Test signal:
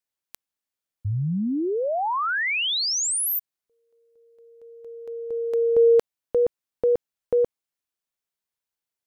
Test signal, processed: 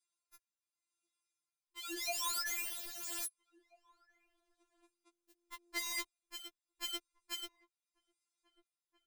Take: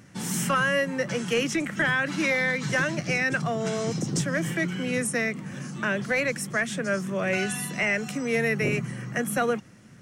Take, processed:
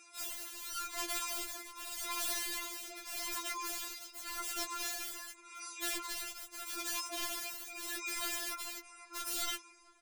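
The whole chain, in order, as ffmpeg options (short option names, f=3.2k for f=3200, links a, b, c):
-filter_complex "[0:a]afftfilt=real='re*between(b*sr/4096,470,11000)':imag='im*between(b*sr/4096,470,11000)':win_size=4096:overlap=0.75,highshelf=f=4.4k:g=6,aecho=1:1:3.7:0.98,acompressor=threshold=-24dB:ratio=4:attack=27:release=39:knee=6:detection=peak,asuperstop=centerf=1900:order=4:qfactor=8,aeval=exprs='(mod(23.7*val(0)+1,2)-1)/23.7':c=same,tremolo=f=0.84:d=0.69,asplit=2[a][b];[b]adelay=1633,volume=-21dB,highshelf=f=4k:g=-36.7[c];[a][c]amix=inputs=2:normalize=0,afreqshift=-290,afftfilt=real='re*4*eq(mod(b,16),0)':imag='im*4*eq(mod(b,16),0)':win_size=2048:overlap=0.75,volume=-1.5dB"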